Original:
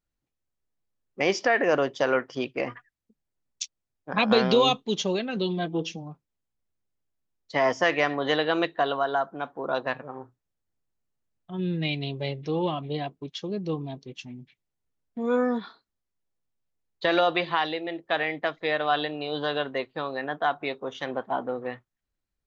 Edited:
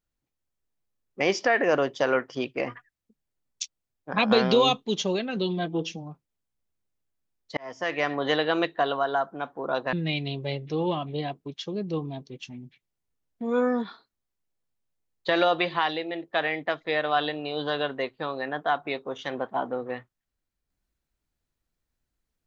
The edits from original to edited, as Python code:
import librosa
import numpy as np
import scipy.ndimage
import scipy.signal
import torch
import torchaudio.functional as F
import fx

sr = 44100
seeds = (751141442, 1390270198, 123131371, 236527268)

y = fx.edit(x, sr, fx.fade_in_span(start_s=7.57, length_s=0.61),
    fx.cut(start_s=9.93, length_s=1.76), tone=tone)